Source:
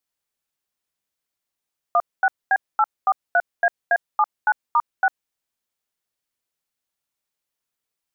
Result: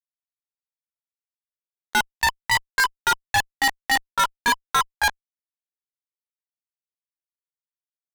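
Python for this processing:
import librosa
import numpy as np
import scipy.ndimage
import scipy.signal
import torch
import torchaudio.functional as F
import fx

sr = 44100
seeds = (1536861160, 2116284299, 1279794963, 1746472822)

y = fx.pitch_glide(x, sr, semitones=4.5, runs='ending unshifted')
y = fx.highpass(y, sr, hz=540.0, slope=6)
y = fx.notch(y, sr, hz=1000.0, q=27.0)
y = fx.fuzz(y, sr, gain_db=39.0, gate_db=-48.0)
y = y * 10.0 ** (-3.5 / 20.0)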